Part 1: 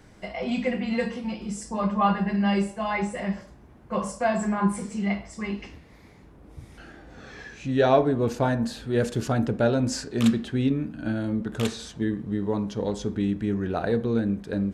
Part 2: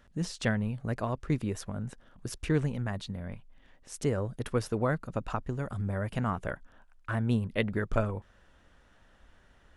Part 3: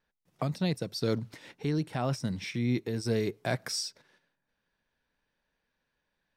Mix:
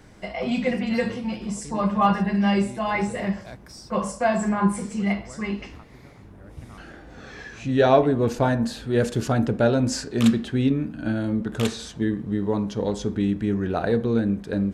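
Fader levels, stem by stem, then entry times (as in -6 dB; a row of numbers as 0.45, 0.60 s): +2.5, -17.0, -11.0 dB; 0.00, 0.45, 0.00 s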